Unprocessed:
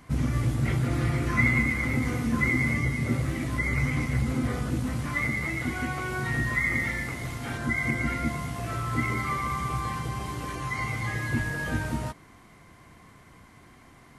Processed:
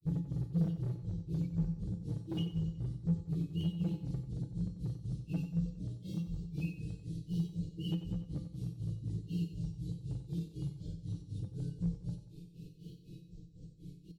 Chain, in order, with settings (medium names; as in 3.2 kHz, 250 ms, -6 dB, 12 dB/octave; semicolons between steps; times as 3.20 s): upward compressor, threshold -36 dBFS; tone controls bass +5 dB, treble -12 dB; granulator 256 ms, grains 4 per s, pitch spread up and down by 7 st; elliptic band-stop 390–3900 Hz, stop band 50 dB; compression 2:1, threshold -32 dBFS, peak gain reduction 7.5 dB; peaking EQ 250 Hz -12 dB 0.23 oct; comb 6.6 ms, depth 63%; hard clipper -26.5 dBFS, distortion -16 dB; feedback comb 170 Hz, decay 0.32 s, harmonics odd, mix 80%; feedback delay 92 ms, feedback 53%, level -11.5 dB; trim +6.5 dB